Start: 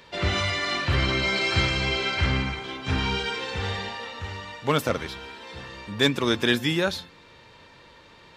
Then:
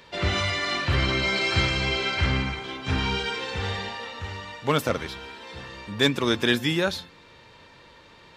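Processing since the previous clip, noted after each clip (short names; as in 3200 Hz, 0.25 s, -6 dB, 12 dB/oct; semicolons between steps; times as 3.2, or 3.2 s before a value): nothing audible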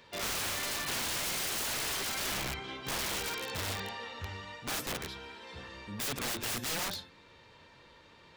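flange 0.57 Hz, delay 8.6 ms, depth 5.9 ms, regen -62%; wrapped overs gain 27 dB; gain -2.5 dB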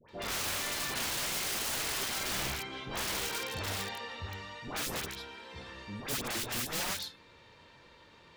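dispersion highs, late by 90 ms, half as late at 1200 Hz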